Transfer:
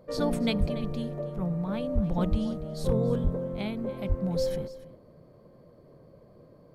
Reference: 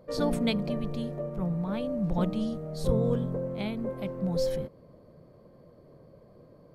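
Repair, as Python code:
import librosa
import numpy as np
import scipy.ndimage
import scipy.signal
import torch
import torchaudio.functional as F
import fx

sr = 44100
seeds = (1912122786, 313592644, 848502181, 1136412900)

y = fx.fix_declip(x, sr, threshold_db=-16.0)
y = fx.fix_deplosive(y, sr, at_s=(0.59, 1.94, 2.3, 3.23, 4.08))
y = fx.fix_echo_inverse(y, sr, delay_ms=286, level_db=-16.5)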